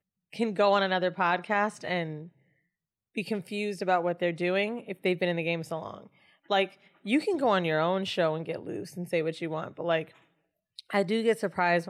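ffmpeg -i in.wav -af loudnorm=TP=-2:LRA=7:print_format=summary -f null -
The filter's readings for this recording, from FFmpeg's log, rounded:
Input Integrated:    -29.0 LUFS
Input True Peak:     -12.0 dBTP
Input LRA:             2.7 LU
Input Threshold:     -39.6 LUFS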